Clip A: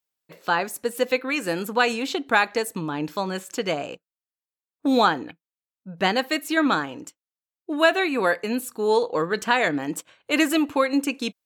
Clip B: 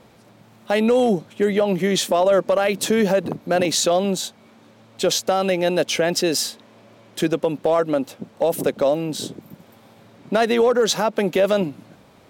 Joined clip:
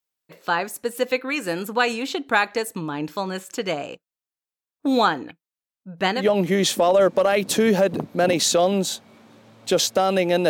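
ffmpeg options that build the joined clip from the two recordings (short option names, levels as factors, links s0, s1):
-filter_complex "[0:a]apad=whole_dur=10.49,atrim=end=10.49,atrim=end=6.26,asetpts=PTS-STARTPTS[s0];[1:a]atrim=start=1.46:end=5.81,asetpts=PTS-STARTPTS[s1];[s0][s1]acrossfade=d=0.12:c1=tri:c2=tri"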